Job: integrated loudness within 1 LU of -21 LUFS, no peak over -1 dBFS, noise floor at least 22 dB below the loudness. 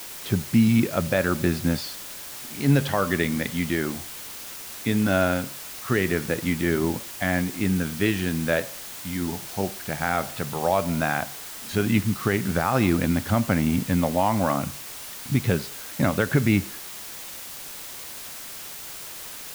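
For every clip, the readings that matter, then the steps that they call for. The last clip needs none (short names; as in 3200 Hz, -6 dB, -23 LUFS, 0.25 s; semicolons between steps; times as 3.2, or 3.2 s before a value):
noise floor -38 dBFS; noise floor target -48 dBFS; loudness -25.5 LUFS; peak -8.5 dBFS; loudness target -21.0 LUFS
-> denoiser 10 dB, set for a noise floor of -38 dBFS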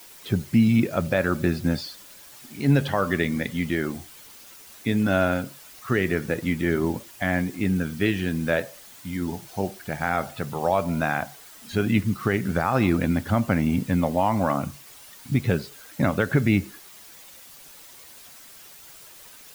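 noise floor -47 dBFS; loudness -24.5 LUFS; peak -8.5 dBFS; loudness target -21.0 LUFS
-> gain +3.5 dB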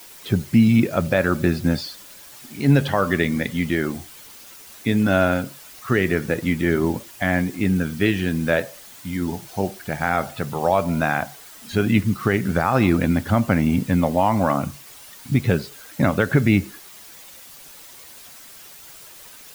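loudness -21.0 LUFS; peak -5.0 dBFS; noise floor -43 dBFS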